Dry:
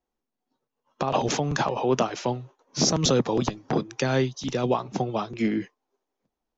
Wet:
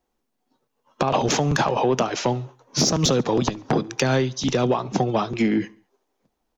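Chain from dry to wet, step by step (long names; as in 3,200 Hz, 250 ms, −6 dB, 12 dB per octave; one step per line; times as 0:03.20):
downward compressor, threshold −24 dBFS, peak gain reduction 7.5 dB
soft clipping −17 dBFS, distortion −23 dB
on a send: repeating echo 70 ms, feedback 49%, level −24 dB
on the sum: level +8.5 dB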